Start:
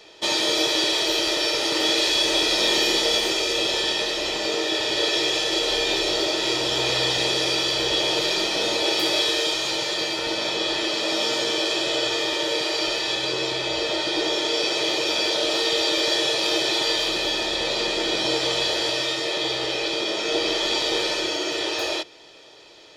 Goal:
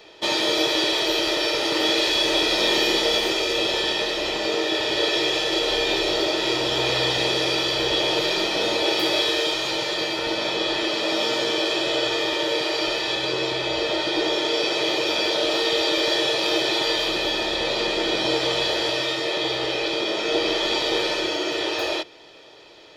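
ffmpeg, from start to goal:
-af "equalizer=f=7.8k:w=0.73:g=-7.5,volume=2dB"

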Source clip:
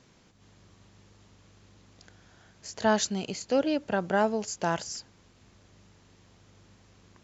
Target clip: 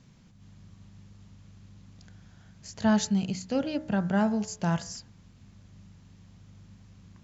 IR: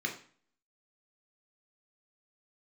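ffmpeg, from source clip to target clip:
-af "lowshelf=f=260:t=q:w=1.5:g=9.5,bandreject=f=61.91:t=h:w=4,bandreject=f=123.82:t=h:w=4,bandreject=f=185.73:t=h:w=4,bandreject=f=247.64:t=h:w=4,bandreject=f=309.55:t=h:w=4,bandreject=f=371.46:t=h:w=4,bandreject=f=433.37:t=h:w=4,bandreject=f=495.28:t=h:w=4,bandreject=f=557.19:t=h:w=4,bandreject=f=619.1:t=h:w=4,bandreject=f=681.01:t=h:w=4,bandreject=f=742.92:t=h:w=4,bandreject=f=804.83:t=h:w=4,bandreject=f=866.74:t=h:w=4,bandreject=f=928.65:t=h:w=4,bandreject=f=990.56:t=h:w=4,bandreject=f=1.05247k:t=h:w=4,bandreject=f=1.11438k:t=h:w=4,bandreject=f=1.17629k:t=h:w=4,bandreject=f=1.2382k:t=h:w=4,bandreject=f=1.30011k:t=h:w=4,bandreject=f=1.36202k:t=h:w=4,bandreject=f=1.42393k:t=h:w=4,bandreject=f=1.48584k:t=h:w=4,bandreject=f=1.54775k:t=h:w=4,bandreject=f=1.60966k:t=h:w=4,bandreject=f=1.67157k:t=h:w=4,bandreject=f=1.73348k:t=h:w=4,bandreject=f=1.79539k:t=h:w=4,bandreject=f=1.8573k:t=h:w=4,bandreject=f=1.91921k:t=h:w=4,bandreject=f=1.98112k:t=h:w=4,bandreject=f=2.04303k:t=h:w=4,bandreject=f=2.10494k:t=h:w=4,volume=-3dB"

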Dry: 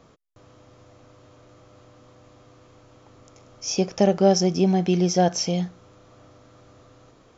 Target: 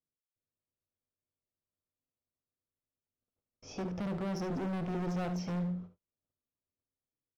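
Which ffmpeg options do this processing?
-filter_complex "[0:a]bandreject=f=60:t=h:w=6,bandreject=f=120:t=h:w=6,bandreject=f=180:t=h:w=6,bandreject=f=240:t=h:w=6,bandreject=f=300:t=h:w=6,bandreject=f=360:t=h:w=6,agate=range=-43dB:threshold=-46dB:ratio=16:detection=peak,firequalizer=gain_entry='entry(220,0);entry(660,-8);entry(6600,-27)':delay=0.05:min_phase=1,alimiter=limit=-20dB:level=0:latency=1:release=28,asoftclip=type=hard:threshold=-34dB,asplit=2[a][b];[b]aecho=0:1:51|73:0.158|0.237[c];[a][c]amix=inputs=2:normalize=0"

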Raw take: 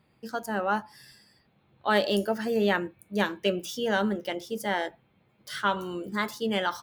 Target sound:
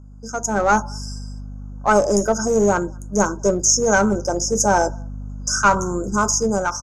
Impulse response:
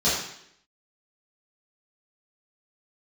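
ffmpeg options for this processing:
-filter_complex "[0:a]asubboost=boost=8.5:cutoff=80,asplit=2[a][b];[b]adelay=200,highpass=300,lowpass=3.4k,asoftclip=type=hard:threshold=-20.5dB,volume=-30dB[c];[a][c]amix=inputs=2:normalize=0,aeval=exprs='val(0)+0.00708*(sin(2*PI*50*n/s)+sin(2*PI*2*50*n/s)/2+sin(2*PI*3*50*n/s)/3+sin(2*PI*4*50*n/s)/4+sin(2*PI*5*50*n/s)/5)':c=same,afftfilt=real='re*(1-between(b*sr/4096,1600,4900))':imag='im*(1-between(b*sr/4096,1600,4900))':win_size=4096:overlap=0.75,adynamicequalizer=threshold=0.01:dfrequency=1200:dqfactor=2:tfrequency=1200:tqfactor=2:attack=5:release=100:ratio=0.375:range=1.5:mode=cutabove:tftype=bell,asplit=2[d][e];[e]aeval=exprs='clip(val(0),-1,0.0355)':c=same,volume=-4dB[f];[d][f]amix=inputs=2:normalize=0,lowpass=f=6.6k:t=q:w=12,dynaudnorm=f=110:g=11:m=15dB,volume=-1.5dB"

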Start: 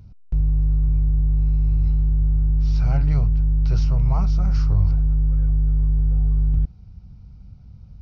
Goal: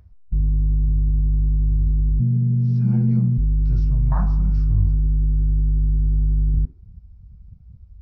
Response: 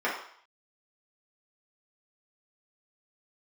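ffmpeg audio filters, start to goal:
-filter_complex "[0:a]afwtdn=0.0501,asplit=3[a][b][c];[a]afade=t=out:st=2.19:d=0.02[d];[b]afreqshift=74,afade=t=in:st=2.19:d=0.02,afade=t=out:st=3.37:d=0.02[e];[c]afade=t=in:st=3.37:d=0.02[f];[d][e][f]amix=inputs=3:normalize=0,asplit=2[g][h];[1:a]atrim=start_sample=2205[i];[h][i]afir=irnorm=-1:irlink=0,volume=-14.5dB[j];[g][j]amix=inputs=2:normalize=0"

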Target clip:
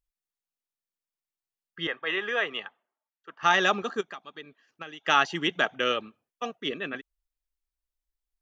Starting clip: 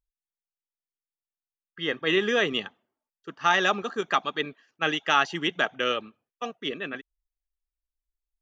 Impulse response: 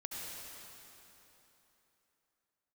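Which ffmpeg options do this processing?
-filter_complex "[0:a]asettb=1/sr,asplit=3[a][b][c];[a]atrim=end=1.874[d];[b]atrim=start=1.87:end=3.43,asetpts=PTS-STARTPTS,afade=t=in:d=0.004:c=qsin,afade=t=out:st=1.556:d=0.004:c=qsin,acrossover=split=550 2800:gain=0.141 1 0.178[e][f][g];[e][f][g]amix=inputs=3:normalize=0[h];[c]atrim=start=3.426[i];[d][h]acrossfade=d=0.004:c1=hsin:c2=qsin[j];[j][i]acrossfade=d=0.004:c1=qsin:c2=hsin,asplit=3[k][l][m];[k]afade=t=out:st=4:d=0.02[n];[l]acompressor=threshold=-39dB:ratio=8,afade=t=in:st=4:d=0.02,afade=t=out:st=5.04:d=0.02[o];[m]afade=t=in:st=5.04:d=0.02[p];[n][o][p]amix=inputs=3:normalize=0"

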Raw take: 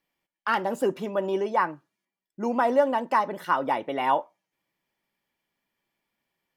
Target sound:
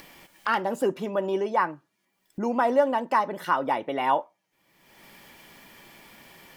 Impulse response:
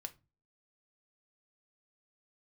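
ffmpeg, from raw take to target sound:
-af "acompressor=mode=upward:threshold=-26dB:ratio=2.5"

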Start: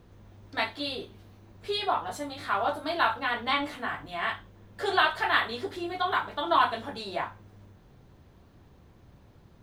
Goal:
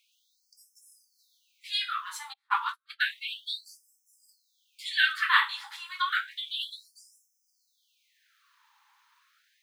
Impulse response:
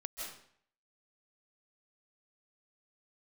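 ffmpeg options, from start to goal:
-filter_complex "[0:a]asplit=3[a][b][c];[a]afade=t=out:st=2.32:d=0.02[d];[b]agate=range=-42dB:threshold=-27dB:ratio=16:detection=peak,afade=t=in:st=2.32:d=0.02,afade=t=out:st=3.09:d=0.02[e];[c]afade=t=in:st=3.09:d=0.02[f];[d][e][f]amix=inputs=3:normalize=0,afftfilt=real='re*gte(b*sr/1024,790*pow(5200/790,0.5+0.5*sin(2*PI*0.31*pts/sr)))':imag='im*gte(b*sr/1024,790*pow(5200/790,0.5+0.5*sin(2*PI*0.31*pts/sr)))':win_size=1024:overlap=0.75,volume=3dB"

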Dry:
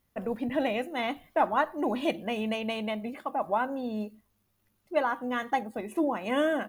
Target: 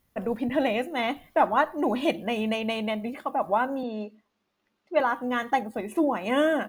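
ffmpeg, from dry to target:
-filter_complex "[0:a]asettb=1/sr,asplit=3[a][b][c];[a]atrim=end=3.834[d];[b]atrim=start=3.83:end=5,asetpts=PTS-STARTPTS,afade=t=in:d=0.004:c=qsin,afade=t=out:st=1.166:d=0.004:c=qsin,acrossover=split=210 5600:gain=0.0794 1 0.0708[e][f][g];[e][f][g]amix=inputs=3:normalize=0[h];[c]atrim=start=4.996[i];[d][h]acrossfade=d=0.004:c1=hsin:c2=qsin[j];[j][i]acrossfade=d=0.004:c1=qsin:c2=hsin,volume=3.5dB"

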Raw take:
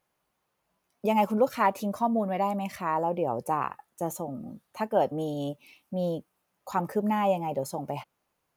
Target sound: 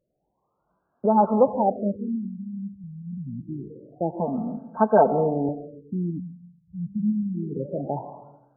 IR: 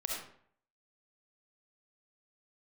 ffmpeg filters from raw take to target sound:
-filter_complex "[0:a]asettb=1/sr,asplit=3[a][b][c];[a]atrim=end=1.974[d];[b]atrim=start=1.97:end=2.84,asetpts=PTS-STARTPTS,afade=t=in:d=0.004:c=qsin,afade=t=out:st=0.866:d=0.004:c=qsin,lowshelf=f=210:g=-10.5[e];[c]atrim=start=2.836[f];[d][e]acrossfade=d=0.004:c1=hsin:c2=qsin[g];[g][f]acrossfade=d=0.004:c1=qsin:c2=hsin,asettb=1/sr,asplit=3[h][i][j];[h]atrim=end=4.194[k];[i]atrim=start=4.19:end=5.49,asetpts=PTS-STARTPTS,afade=t=in:d=0.004:c=qsin,afade=t=out:st=1.296:d=0.004:c=qsin,aecho=1:1:4.5:1,atrim=end_sample=57330[l];[j]atrim=start=5.486[m];[k][l]acrossfade=d=0.004:c1=hsin:c2=qsin[n];[n][m]acrossfade=d=0.004:c1=qsin:c2=hsin,asplit=2[o][p];[p]adynamicequalizer=threshold=0.00794:dfrequency=1000:dqfactor=3.9:tfrequency=1000:tqfactor=3.9:attack=5:release=100:ratio=0.375:range=2:mode=cutabove:tftype=bell[q];[1:a]atrim=start_sample=2205,asetrate=24696,aresample=44100[r];[q][r]afir=irnorm=-1:irlink=0,volume=-13.5dB[s];[o][s]amix=inputs=2:normalize=0,afftfilt=real='re*lt(b*sr/1024,210*pow(1700/210,0.5+0.5*sin(2*PI*0.26*pts/sr)))':imag='im*lt(b*sr/1024,210*pow(1700/210,0.5+0.5*sin(2*PI*0.26*pts/sr)))':win_size=1024:overlap=0.75,volume=3.5dB"

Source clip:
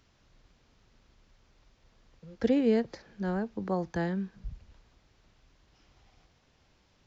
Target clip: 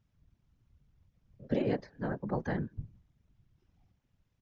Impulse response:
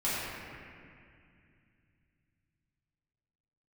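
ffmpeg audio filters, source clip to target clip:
-filter_complex "[0:a]afftdn=nr=15:nf=-55,equalizer=f=4.5k:w=2.9:g=-4.5,acrossover=split=230|450|2700[a][b][c][d];[b]acompressor=threshold=-43dB:ratio=4[e];[a][e][c][d]amix=inputs=4:normalize=0,atempo=1.6,afftfilt=real='hypot(re,im)*cos(2*PI*random(0))':imag='hypot(re,im)*sin(2*PI*random(1))':win_size=512:overlap=0.75,volume=5dB"

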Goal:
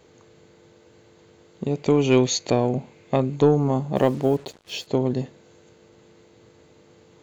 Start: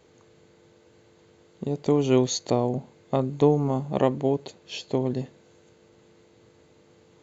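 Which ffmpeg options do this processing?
-filter_complex "[0:a]asettb=1/sr,asplit=3[a][b][c];[a]atrim=end=1.664[d];[b]atrim=start=1.66:end=3.36,asetpts=PTS-STARTPTS,afade=t=in:d=0.004:c=qsin,afade=t=out:st=1.696:d=0.004:c=qsin,equalizer=f=2.4k:w=3.1:g=8.5[e];[c]atrim=start=3.356[f];[d][e]acrossfade=d=0.004:c1=hsin:c2=qsin[g];[g][f]acrossfade=d=0.004:c1=qsin:c2=hsin,asettb=1/sr,asplit=3[h][i][j];[h]atrim=end=3.964[k];[i]atrim=start=3.96:end=4.87,asetpts=PTS-STARTPTS,afade=t=in:d=0.004:c=qsin,afade=t=out:st=0.906:d=0.004:c=qsin,acrusher=bits=7:mix=0:aa=0.5[l];[j]atrim=start=4.866[m];[k][l]acrossfade=d=0.004:c1=hsin:c2=qsin[n];[n][m]acrossfade=d=0.004:c1=qsin:c2=hsin,acontrast=85,volume=-3.5dB"

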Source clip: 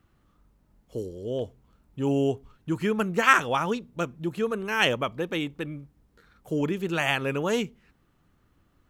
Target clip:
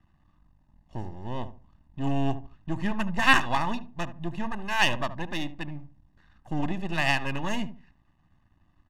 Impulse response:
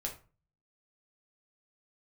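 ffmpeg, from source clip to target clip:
-filter_complex "[0:a]aeval=exprs='if(lt(val(0),0),0.251*val(0),val(0))':c=same,aecho=1:1:1.1:0.87,adynamicsmooth=sensitivity=6.5:basefreq=5.2k,asplit=2[a][b];[b]adelay=73,lowpass=f=1k:p=1,volume=-11dB,asplit=2[c][d];[d]adelay=73,lowpass=f=1k:p=1,volume=0.28,asplit=2[e][f];[f]adelay=73,lowpass=f=1k:p=1,volume=0.28[g];[a][c][e][g]amix=inputs=4:normalize=0"

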